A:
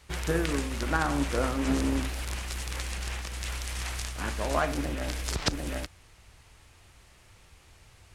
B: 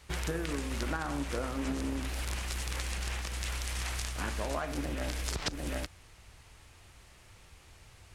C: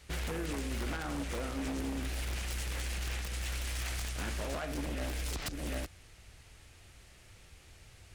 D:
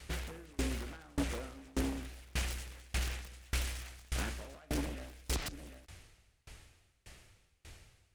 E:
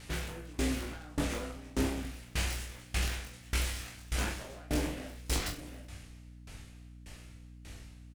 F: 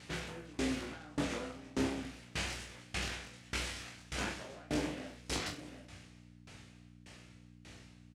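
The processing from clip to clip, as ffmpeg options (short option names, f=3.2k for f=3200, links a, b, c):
-af "acompressor=threshold=-30dB:ratio=10"
-af "equalizer=f=1k:t=o:w=0.64:g=-6.5,aeval=exprs='0.0299*(abs(mod(val(0)/0.0299+3,4)-2)-1)':c=same"
-af "aeval=exprs='val(0)*pow(10,-30*if(lt(mod(1.7*n/s,1),2*abs(1.7)/1000),1-mod(1.7*n/s,1)/(2*abs(1.7)/1000),(mod(1.7*n/s,1)-2*abs(1.7)/1000)/(1-2*abs(1.7)/1000))/20)':c=same,volume=6dB"
-filter_complex "[0:a]asplit=2[a][b];[b]adelay=30,volume=-11dB[c];[a][c]amix=inputs=2:normalize=0,aecho=1:1:20|42|66.2|92.82|122.1:0.631|0.398|0.251|0.158|0.1,aeval=exprs='val(0)+0.00282*(sin(2*PI*60*n/s)+sin(2*PI*2*60*n/s)/2+sin(2*PI*3*60*n/s)/3+sin(2*PI*4*60*n/s)/4+sin(2*PI*5*60*n/s)/5)':c=same,volume=1.5dB"
-af "highpass=110,lowpass=7.2k,volume=-1.5dB"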